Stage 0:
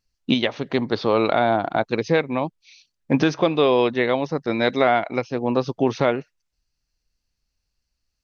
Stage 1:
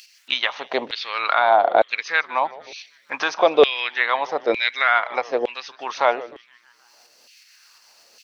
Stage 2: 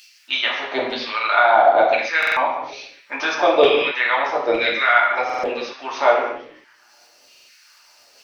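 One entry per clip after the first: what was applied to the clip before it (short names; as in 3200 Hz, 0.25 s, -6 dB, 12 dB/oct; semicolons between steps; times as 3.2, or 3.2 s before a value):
upward compressor, threshold -26 dBFS; frequency-shifting echo 0.154 s, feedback 62%, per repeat -120 Hz, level -19 dB; LFO high-pass saw down 1.1 Hz 460–2900 Hz; gain +1.5 dB
reverb, pre-delay 3 ms, DRR -5.5 dB; stuck buffer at 2.18/5.25/7.3, samples 2048, times 3; gain -4 dB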